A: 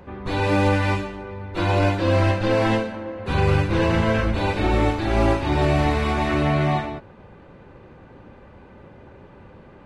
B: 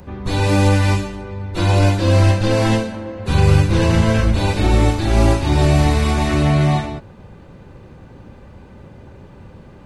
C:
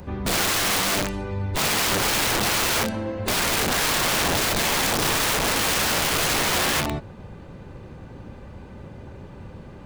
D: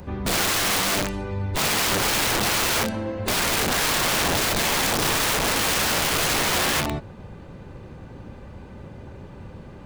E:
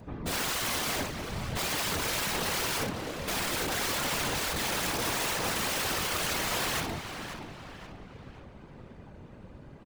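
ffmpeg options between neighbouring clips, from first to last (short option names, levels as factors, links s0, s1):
-filter_complex "[0:a]bass=f=250:g=8,treble=f=4000:g=14,acrossover=split=840[s0][s1];[s0]crystalizer=i=8:c=0[s2];[s2][s1]amix=inputs=2:normalize=0"
-af "aeval=exprs='(mod(7.5*val(0)+1,2)-1)/7.5':c=same"
-af anull
-filter_complex "[0:a]asplit=2[s0][s1];[s1]adelay=531,lowpass=f=4200:p=1,volume=0.398,asplit=2[s2][s3];[s3]adelay=531,lowpass=f=4200:p=1,volume=0.46,asplit=2[s4][s5];[s5]adelay=531,lowpass=f=4200:p=1,volume=0.46,asplit=2[s6][s7];[s7]adelay=531,lowpass=f=4200:p=1,volume=0.46,asplit=2[s8][s9];[s9]adelay=531,lowpass=f=4200:p=1,volume=0.46[s10];[s0][s2][s4][s6][s8][s10]amix=inputs=6:normalize=0,afftfilt=real='hypot(re,im)*cos(2*PI*random(0))':imag='hypot(re,im)*sin(2*PI*random(1))':win_size=512:overlap=0.75,volume=0.708"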